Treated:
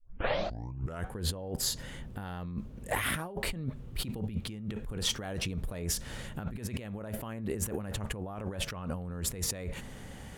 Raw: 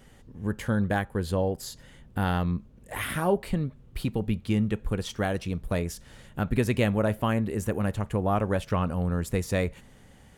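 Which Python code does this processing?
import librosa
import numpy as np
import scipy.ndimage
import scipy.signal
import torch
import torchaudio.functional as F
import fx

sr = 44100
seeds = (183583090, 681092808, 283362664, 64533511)

y = fx.tape_start_head(x, sr, length_s=1.14)
y = fx.over_compress(y, sr, threshold_db=-36.0, ratio=-1.0)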